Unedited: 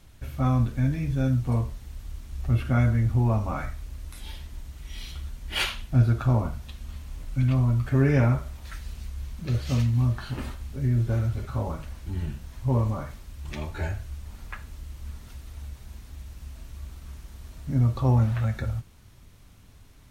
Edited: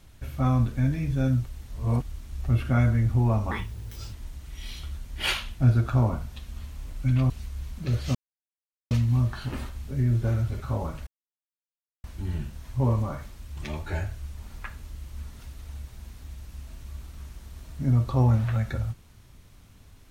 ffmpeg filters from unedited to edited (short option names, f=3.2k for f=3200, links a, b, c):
-filter_complex "[0:a]asplit=8[a][b][c][d][e][f][g][h];[a]atrim=end=1.462[i];[b]atrim=start=1.458:end=2.022,asetpts=PTS-STARTPTS,areverse[j];[c]atrim=start=2.018:end=3.514[k];[d]atrim=start=3.51:end=4.45,asetpts=PTS-STARTPTS,asetrate=67032,aresample=44100,atrim=end_sample=27272,asetpts=PTS-STARTPTS[l];[e]atrim=start=4.446:end=7.622[m];[f]atrim=start=8.908:end=9.76,asetpts=PTS-STARTPTS,afade=t=out:st=0.848:d=0.004:c=hsin,apad=pad_dur=0.76[n];[g]atrim=start=9.76:end=11.92,asetpts=PTS-STARTPTS,afade=t=in:d=0.004:c=hsin,afade=t=out:st=2.156:d=0.004:c=hsin,apad=pad_dur=0.97[o];[h]atrim=start=11.92,asetpts=PTS-STARTPTS,afade=t=in:d=0.004:c=hsin[p];[i][j]acrossfade=d=0.004:c1=hsin:c2=hsin[q];[q][k]acrossfade=d=0.004:c1=hsin:c2=hsin[r];[r][l]acrossfade=d=0.004:c1=hsin:c2=hsin[s];[s][m]acrossfade=d=0.004:c1=hsin:c2=hsin[t];[n][o][p]concat=n=3:v=0:a=1[u];[t][u]acrossfade=d=0.004:c1=hsin:c2=hsin"